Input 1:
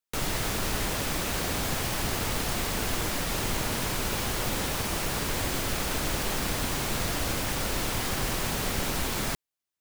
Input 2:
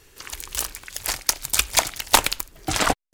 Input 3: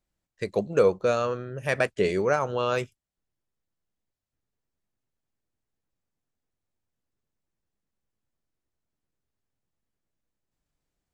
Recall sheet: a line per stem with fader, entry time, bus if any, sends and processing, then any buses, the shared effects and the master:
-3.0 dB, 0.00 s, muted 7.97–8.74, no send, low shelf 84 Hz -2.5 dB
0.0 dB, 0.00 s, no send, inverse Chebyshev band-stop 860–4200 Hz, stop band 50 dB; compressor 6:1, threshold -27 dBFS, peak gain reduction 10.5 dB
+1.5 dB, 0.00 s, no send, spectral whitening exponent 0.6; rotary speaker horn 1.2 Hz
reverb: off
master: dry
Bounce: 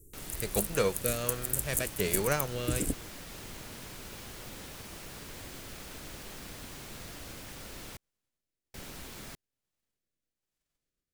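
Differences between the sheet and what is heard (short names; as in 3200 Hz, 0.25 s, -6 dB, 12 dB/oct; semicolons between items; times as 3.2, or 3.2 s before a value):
stem 1 -3.0 dB -> -14.5 dB; stem 3 +1.5 dB -> -4.5 dB; master: extra bell 900 Hz -3.5 dB 1.2 oct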